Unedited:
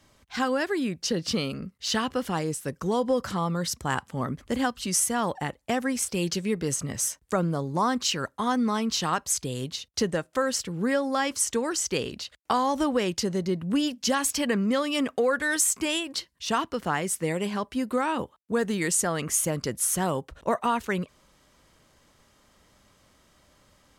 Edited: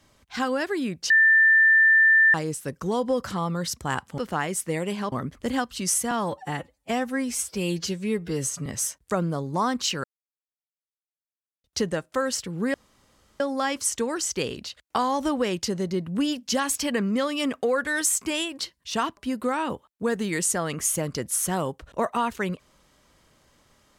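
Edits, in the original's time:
0:01.10–0:02.34: beep over 1,780 Hz −13.5 dBFS
0:05.17–0:06.87: time-stretch 1.5×
0:08.25–0:09.85: silence
0:10.95: splice in room tone 0.66 s
0:16.72–0:17.66: move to 0:04.18

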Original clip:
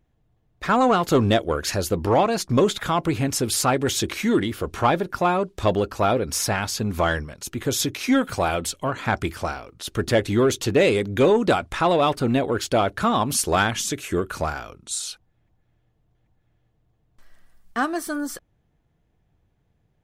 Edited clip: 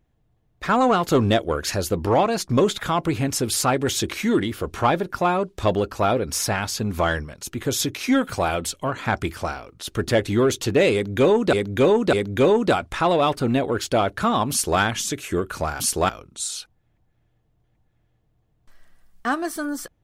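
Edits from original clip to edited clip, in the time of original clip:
0:10.93–0:11.53: repeat, 3 plays
0:13.31–0:13.60: duplicate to 0:14.60

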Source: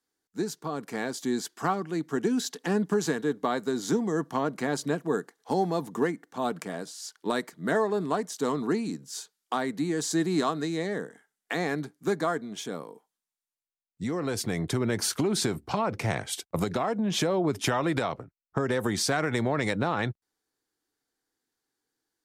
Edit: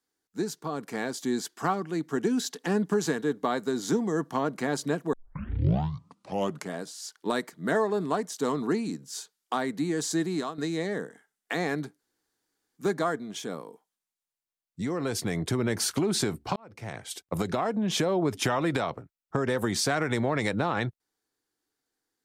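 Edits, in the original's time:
0:05.13: tape start 1.61 s
0:09.92–0:10.58: fade out equal-power, to −11.5 dB
0:11.99: splice in room tone 0.78 s
0:15.78–0:16.74: fade in

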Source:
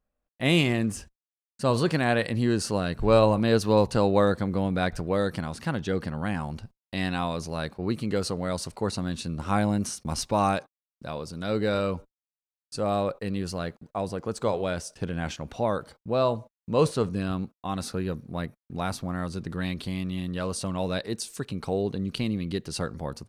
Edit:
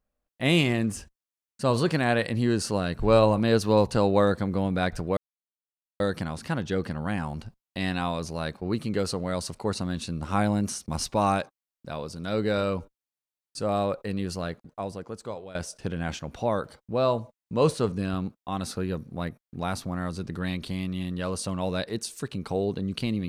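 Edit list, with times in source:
0:05.17: splice in silence 0.83 s
0:13.60–0:14.72: fade out, to −16.5 dB

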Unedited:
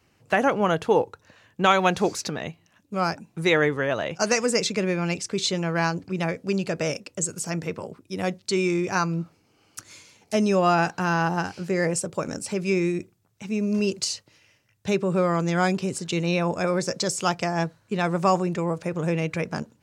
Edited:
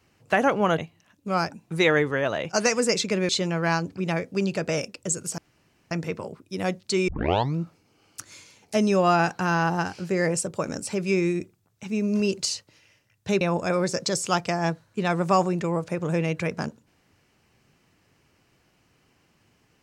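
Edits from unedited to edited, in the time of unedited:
0:00.78–0:02.44: remove
0:04.95–0:05.41: remove
0:07.50: splice in room tone 0.53 s
0:08.67: tape start 0.48 s
0:15.00–0:16.35: remove

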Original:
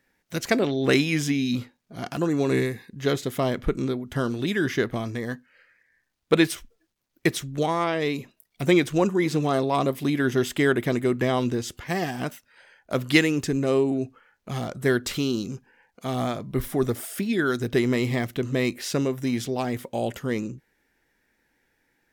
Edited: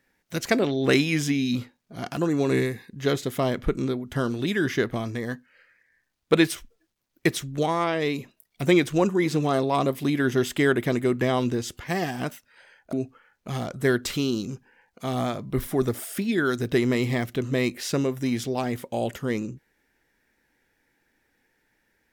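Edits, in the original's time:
0:12.93–0:13.94: remove

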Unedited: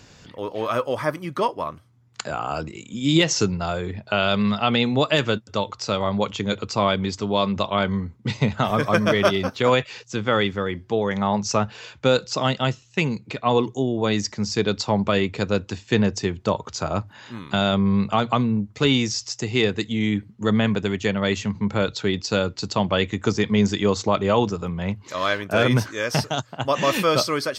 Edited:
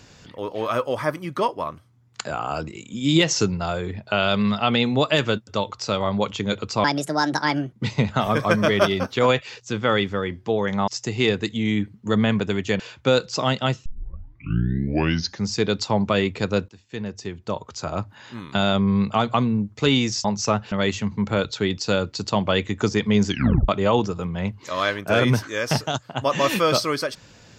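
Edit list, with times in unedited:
0:06.84–0:08.16: play speed 149%
0:11.31–0:11.78: swap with 0:19.23–0:21.15
0:12.84: tape start 1.63 s
0:15.67–0:17.38: fade in, from −20.5 dB
0:23.72: tape stop 0.40 s

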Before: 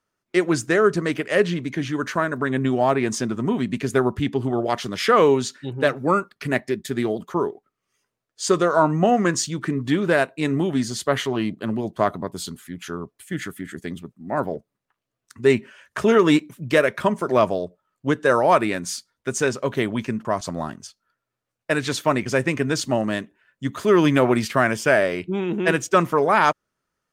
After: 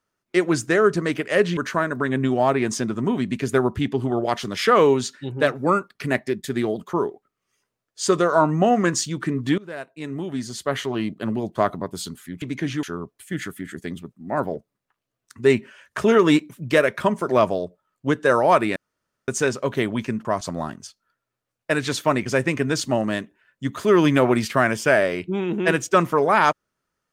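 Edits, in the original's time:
0:01.57–0:01.98: move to 0:12.83
0:09.99–0:11.68: fade in, from −21.5 dB
0:18.76–0:19.28: fill with room tone

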